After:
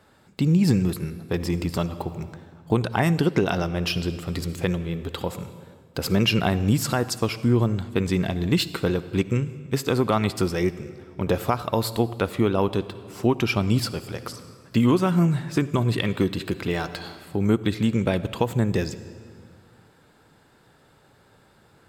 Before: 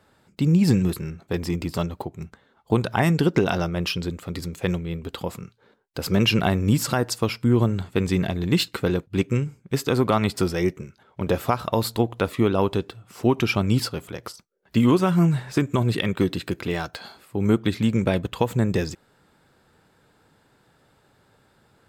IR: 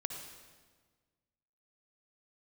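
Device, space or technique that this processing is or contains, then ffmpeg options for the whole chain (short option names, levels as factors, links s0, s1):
ducked reverb: -filter_complex "[0:a]asplit=3[s0][s1][s2];[1:a]atrim=start_sample=2205[s3];[s1][s3]afir=irnorm=-1:irlink=0[s4];[s2]apad=whole_len=964989[s5];[s4][s5]sidechaincompress=threshold=0.0562:ratio=8:attack=11:release=1020,volume=1.12[s6];[s0][s6]amix=inputs=2:normalize=0,volume=0.708"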